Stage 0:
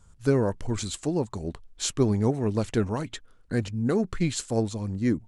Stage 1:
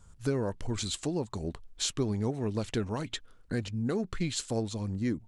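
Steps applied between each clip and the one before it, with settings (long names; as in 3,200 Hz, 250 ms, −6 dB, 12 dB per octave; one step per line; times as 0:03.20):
dynamic equaliser 3,600 Hz, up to +5 dB, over −50 dBFS, Q 1.1
downward compressor 2 to 1, threshold −32 dBFS, peak gain reduction 8.5 dB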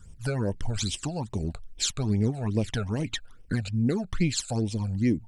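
all-pass phaser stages 12, 2.4 Hz, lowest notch 310–1,400 Hz
level +6.5 dB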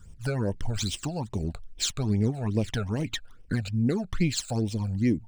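running median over 3 samples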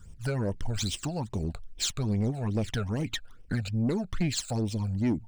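soft clipping −20.5 dBFS, distortion −15 dB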